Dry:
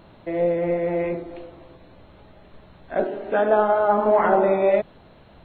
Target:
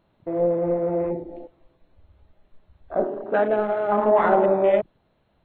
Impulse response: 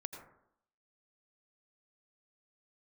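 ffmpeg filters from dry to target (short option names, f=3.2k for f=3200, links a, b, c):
-filter_complex "[0:a]afwtdn=0.0282,asettb=1/sr,asplit=3[a][b][c];[a]atrim=end=3.454[d];[b]atrim=start=3.45:end=3.92,asetpts=PTS-STARTPTS,afade=t=in:d=0.004:c=qsin,afade=t=out:st=0.466:d=0.004:c=qsin,equalizer=f=1k:w=1.3:g=-10.5[e];[c]atrim=start=3.916[f];[d][e]acrossfade=d=0.004:c1=hsin:c2=qsin[g];[g][f]acrossfade=d=0.004:c1=qsin:c2=hsin"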